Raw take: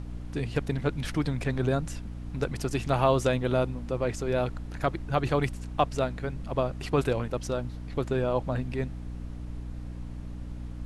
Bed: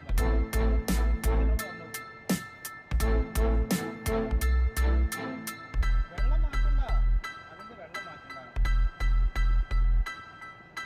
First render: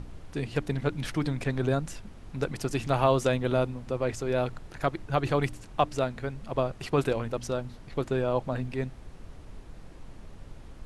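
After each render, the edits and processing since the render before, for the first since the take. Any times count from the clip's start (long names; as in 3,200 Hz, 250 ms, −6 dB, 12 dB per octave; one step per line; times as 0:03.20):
hum removal 60 Hz, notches 5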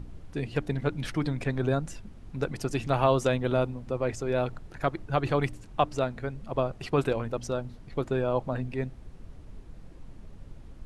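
broadband denoise 6 dB, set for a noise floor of −47 dBFS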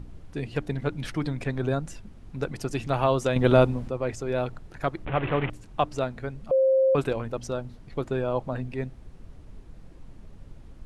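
0:03.36–0:03.88: clip gain +8 dB
0:05.05–0:05.50: linear delta modulator 16 kbit/s, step −25.5 dBFS
0:06.51–0:06.95: beep over 530 Hz −17 dBFS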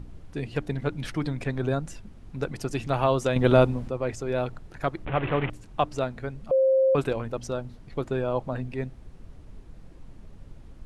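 no processing that can be heard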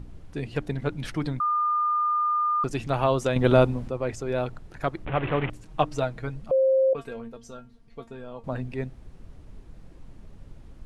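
0:01.40–0:02.64: beep over 1,210 Hz −21 dBFS
0:05.65–0:06.41: comb filter 6.4 ms, depth 58%
0:06.93–0:08.44: tuned comb filter 230 Hz, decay 0.17 s, mix 90%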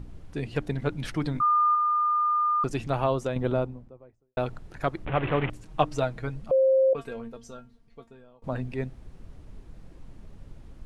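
0:01.33–0:01.75: double-tracking delay 20 ms −3.5 dB
0:02.49–0:04.37: fade out and dull
0:07.40–0:08.42: fade out, to −22.5 dB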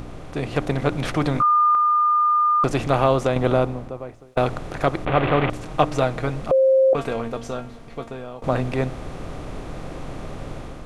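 compressor on every frequency bin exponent 0.6
automatic gain control gain up to 5 dB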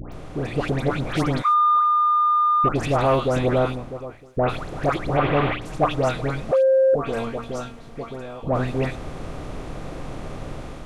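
all-pass dispersion highs, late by 124 ms, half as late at 1,500 Hz
soft clipping −8 dBFS, distortion −25 dB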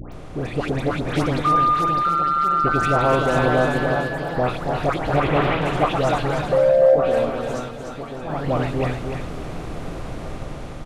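delay with pitch and tempo change per echo 756 ms, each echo +2 semitones, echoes 3, each echo −6 dB
on a send: repeating echo 298 ms, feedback 25%, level −6 dB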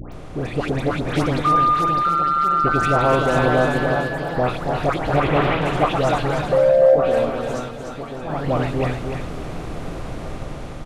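level +1 dB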